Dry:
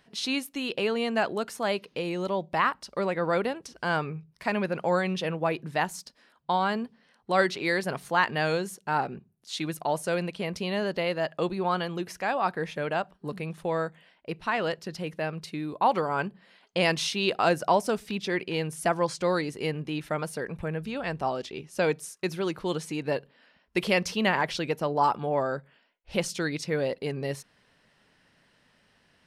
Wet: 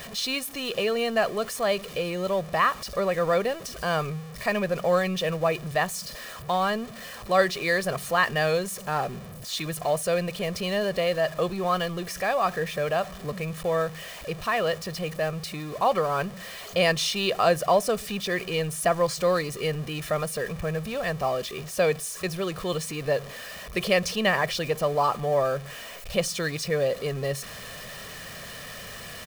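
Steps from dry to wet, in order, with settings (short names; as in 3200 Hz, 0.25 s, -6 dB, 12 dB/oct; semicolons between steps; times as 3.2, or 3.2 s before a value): zero-crossing step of -36 dBFS; high shelf 12000 Hz +4 dB; comb 1.7 ms, depth 57%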